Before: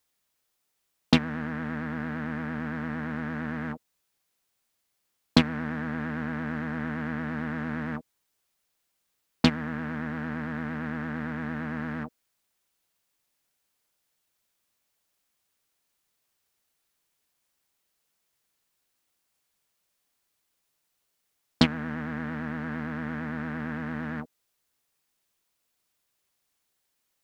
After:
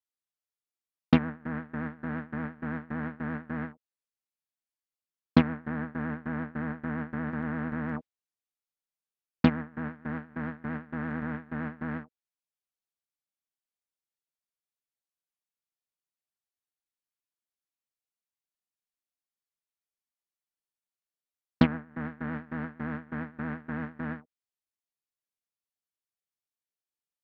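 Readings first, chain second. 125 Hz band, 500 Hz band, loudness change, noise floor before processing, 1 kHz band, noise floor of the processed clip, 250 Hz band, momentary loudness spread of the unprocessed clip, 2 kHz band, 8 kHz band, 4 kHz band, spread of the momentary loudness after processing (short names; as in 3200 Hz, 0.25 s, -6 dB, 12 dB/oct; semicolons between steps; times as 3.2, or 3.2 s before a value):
-1.0 dB, -1.5 dB, -2.0 dB, -78 dBFS, -2.0 dB, under -85 dBFS, -1.0 dB, 9 LU, -4.0 dB, n/a, -12.0 dB, 11 LU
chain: treble ducked by the level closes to 1800 Hz, closed at -28.5 dBFS; gate with hold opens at -23 dBFS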